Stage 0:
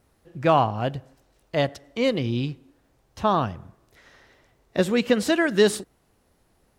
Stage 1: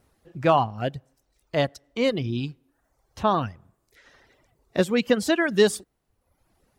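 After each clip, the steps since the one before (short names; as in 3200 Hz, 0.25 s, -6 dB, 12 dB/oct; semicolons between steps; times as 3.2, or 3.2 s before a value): reverb removal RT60 0.85 s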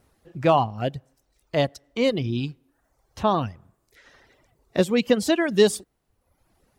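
dynamic EQ 1500 Hz, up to -6 dB, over -39 dBFS, Q 1.9; gain +1.5 dB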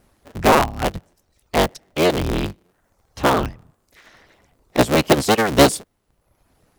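cycle switcher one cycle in 3, inverted; gain +4.5 dB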